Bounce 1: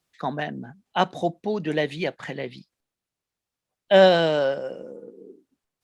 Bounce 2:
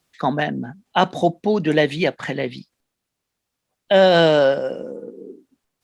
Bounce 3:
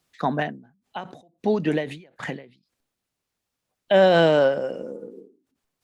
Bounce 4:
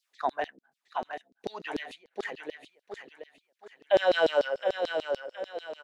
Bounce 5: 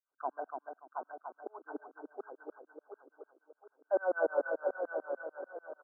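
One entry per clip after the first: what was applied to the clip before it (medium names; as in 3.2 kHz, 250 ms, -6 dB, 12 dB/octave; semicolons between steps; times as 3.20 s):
peaking EQ 250 Hz +3 dB 0.35 oct; in parallel at 0 dB: compressor with a negative ratio -20 dBFS, ratio -0.5
dynamic bell 4.5 kHz, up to -6 dB, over -39 dBFS, Q 1.1; endings held to a fixed fall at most 130 dB/s; trim -2.5 dB
on a send: feedback delay 718 ms, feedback 37%, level -6.5 dB; on the sum: LFO high-pass saw down 6.8 Hz 320–5000 Hz; trim -8.5 dB
brick-wall FIR band-pass 250–1600 Hz; on a send: feedback delay 290 ms, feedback 20%, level -5.5 dB; on the sum: trim -8 dB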